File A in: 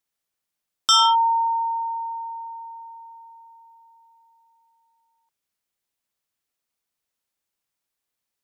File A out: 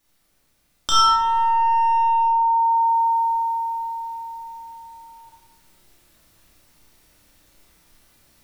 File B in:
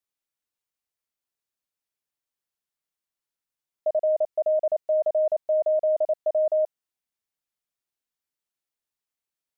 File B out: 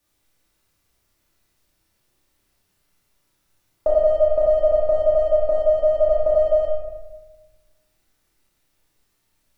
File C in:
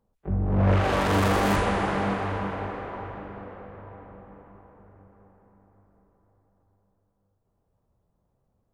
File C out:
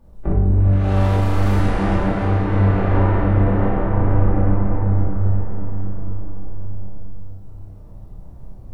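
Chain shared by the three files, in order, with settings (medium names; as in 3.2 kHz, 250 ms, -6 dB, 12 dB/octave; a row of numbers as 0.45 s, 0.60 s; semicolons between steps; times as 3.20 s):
in parallel at -9.5 dB: one-sided clip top -29.5 dBFS; on the sum: peak limiter -20.5 dBFS; bass shelf 410 Hz +7 dB; compression 5:1, threshold -34 dBFS; flutter echo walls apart 5.3 m, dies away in 0.29 s; gain riding within 4 dB 0.5 s; bass shelf 69 Hz +10 dB; simulated room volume 580 m³, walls mixed, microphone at 2.5 m; normalise loudness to -19 LUFS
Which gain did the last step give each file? +12.0 dB, +10.5 dB, +7.0 dB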